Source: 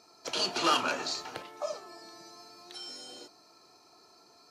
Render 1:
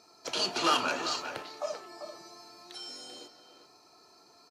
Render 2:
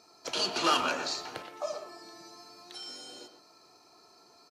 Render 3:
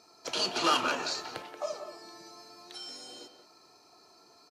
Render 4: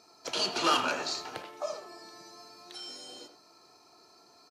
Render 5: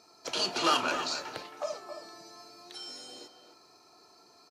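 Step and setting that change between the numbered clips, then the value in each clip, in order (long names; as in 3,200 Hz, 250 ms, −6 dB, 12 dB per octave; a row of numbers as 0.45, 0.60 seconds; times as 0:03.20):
far-end echo of a speakerphone, delay time: 390, 120, 180, 80, 270 milliseconds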